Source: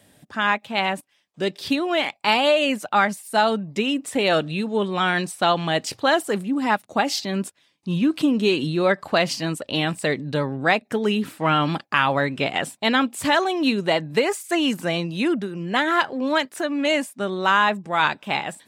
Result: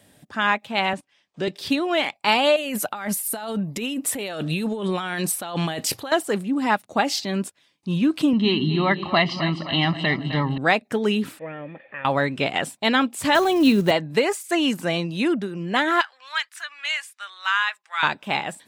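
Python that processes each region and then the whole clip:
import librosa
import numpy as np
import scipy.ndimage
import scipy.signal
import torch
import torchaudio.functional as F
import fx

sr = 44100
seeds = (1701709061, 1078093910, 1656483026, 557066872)

y = fx.chain(x, sr, fx.block_float(bits=7),
    fx.lowpass(hz=6700.0, slope=12),
    fx.band_squash(depth_pct=40), at=(0.93, 1.48))
y = fx.chain(y, sr, fx.peak_eq(hz=12000.0, db=15.0, octaves=0.5),
    fx.over_compress(threshold_db=-27.0, ratio=-1.0), at=(2.56, 6.12))
y = fx.chain(y, sr, fx.lowpass(hz=4100.0, slope=24),
    fx.comb(ms=1.0, depth=0.76),
    fx.echo_split(split_hz=390.0, low_ms=114, high_ms=260, feedback_pct=52, wet_db=-10.5), at=(8.33, 10.58))
y = fx.chain(y, sr, fx.crossing_spikes(level_db=-16.0),
    fx.formant_cascade(vowel='e'),
    fx.low_shelf(hz=170.0, db=7.0), at=(11.39, 12.05))
y = fx.chain(y, sr, fx.block_float(bits=5),
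    fx.low_shelf(hz=280.0, db=9.5),
    fx.band_squash(depth_pct=40), at=(13.35, 13.91))
y = fx.chain(y, sr, fx.highpass(hz=1300.0, slope=24),
    fx.high_shelf(hz=8900.0, db=-9.0), at=(16.01, 18.03))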